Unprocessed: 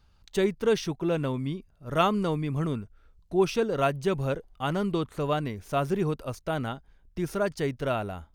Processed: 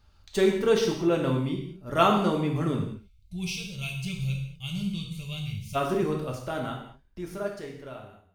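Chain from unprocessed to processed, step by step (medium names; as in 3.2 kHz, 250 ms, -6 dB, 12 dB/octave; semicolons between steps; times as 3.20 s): fade out at the end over 2.74 s; time-frequency box 2.89–5.75 s, 210–2100 Hz -27 dB; gated-style reverb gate 250 ms falling, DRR 0 dB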